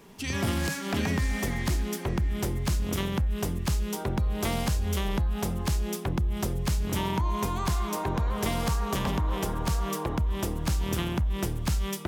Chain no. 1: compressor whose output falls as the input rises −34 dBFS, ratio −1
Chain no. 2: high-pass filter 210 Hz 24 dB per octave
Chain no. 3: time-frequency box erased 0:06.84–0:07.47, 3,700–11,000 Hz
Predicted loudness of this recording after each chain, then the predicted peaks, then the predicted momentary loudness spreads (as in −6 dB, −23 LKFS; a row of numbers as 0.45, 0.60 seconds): −34.5, −33.0, −29.5 LKFS; −18.0, −15.5, −18.5 dBFS; 4, 5, 2 LU